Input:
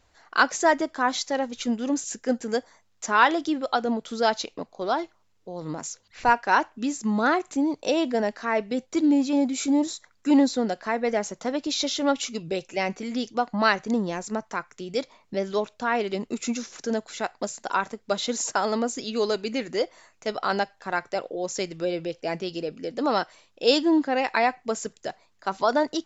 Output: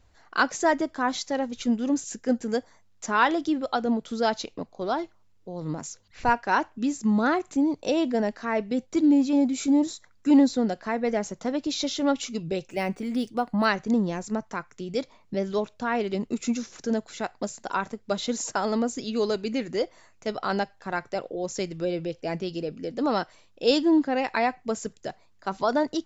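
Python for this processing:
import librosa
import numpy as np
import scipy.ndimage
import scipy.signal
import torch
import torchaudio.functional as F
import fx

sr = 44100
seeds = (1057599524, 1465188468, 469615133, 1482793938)

y = fx.low_shelf(x, sr, hz=250.0, db=10.5)
y = fx.resample_linear(y, sr, factor=3, at=(12.7, 13.65))
y = y * librosa.db_to_amplitude(-3.5)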